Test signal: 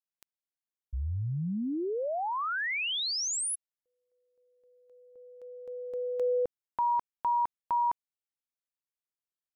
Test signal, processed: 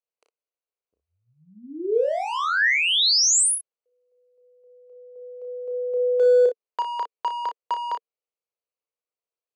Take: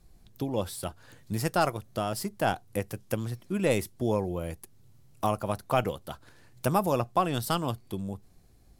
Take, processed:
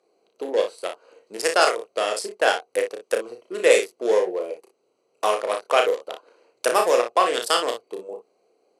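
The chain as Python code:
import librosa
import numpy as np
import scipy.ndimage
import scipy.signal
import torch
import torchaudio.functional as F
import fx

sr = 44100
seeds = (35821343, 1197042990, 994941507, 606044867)

p1 = fx.wiener(x, sr, points=25)
p2 = fx.high_shelf(p1, sr, hz=2100.0, db=9.5)
p3 = np.clip(p2, -10.0 ** (-23.0 / 20.0), 10.0 ** (-23.0 / 20.0))
p4 = p2 + F.gain(torch.from_numpy(p3), -9.5).numpy()
p5 = fx.cabinet(p4, sr, low_hz=420.0, low_slope=24, high_hz=9600.0, hz=(460.0, 850.0, 1800.0), db=(8, -5, 5))
p6 = fx.room_early_taps(p5, sr, ms=(33, 59), db=(-5.0, -9.0))
y = F.gain(torch.from_numpy(p6), 4.0).numpy()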